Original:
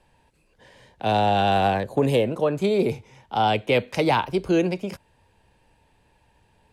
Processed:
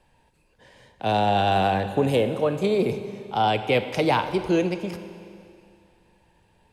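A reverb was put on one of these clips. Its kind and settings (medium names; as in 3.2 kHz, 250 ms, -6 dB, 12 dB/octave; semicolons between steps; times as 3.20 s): Schroeder reverb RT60 2.5 s, combs from 31 ms, DRR 10 dB; trim -1 dB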